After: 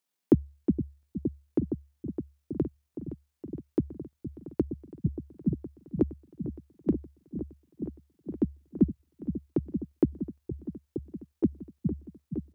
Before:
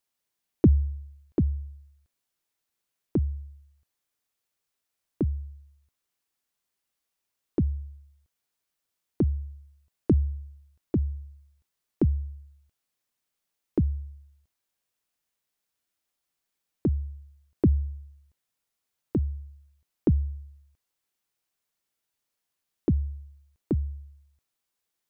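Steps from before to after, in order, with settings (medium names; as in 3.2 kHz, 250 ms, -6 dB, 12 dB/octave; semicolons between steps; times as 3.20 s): tempo 2×; resonant low shelf 120 Hz -10.5 dB, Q 1.5; delay with an opening low-pass 466 ms, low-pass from 200 Hz, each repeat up 1 oct, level -6 dB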